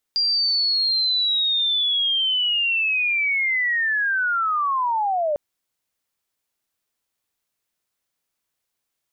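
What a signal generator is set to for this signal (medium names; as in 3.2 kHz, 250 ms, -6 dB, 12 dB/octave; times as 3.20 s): sweep linear 4.8 kHz -> 570 Hz -17.5 dBFS -> -19 dBFS 5.20 s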